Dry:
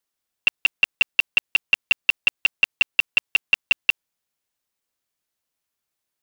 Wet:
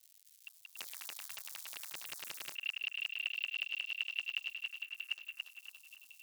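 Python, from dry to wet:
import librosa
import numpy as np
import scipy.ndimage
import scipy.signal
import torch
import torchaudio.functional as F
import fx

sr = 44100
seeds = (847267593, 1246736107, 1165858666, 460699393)

y = fx.reverse_delay_fb(x, sr, ms=644, feedback_pct=47, wet_db=-12.5)
y = scipy.signal.sosfilt(scipy.signal.butter(2, 4900.0, 'lowpass', fs=sr, output='sos'), y)
y = fx.high_shelf(y, sr, hz=2000.0, db=-4.0)
y = fx.over_compress(y, sr, threshold_db=-27.0, ratio=-0.5)
y = fx.dmg_crackle(y, sr, seeds[0], per_s=210.0, level_db=-46.0)
y = fx.env_phaser(y, sr, low_hz=190.0, high_hz=3400.0, full_db=-25.5)
y = np.diff(y, prepend=0.0)
y = fx.echo_feedback(y, sr, ms=284, feedback_pct=35, wet_db=-4)
y = fx.spectral_comp(y, sr, ratio=4.0, at=(0.76, 2.54), fade=0.02)
y = y * librosa.db_to_amplitude(2.5)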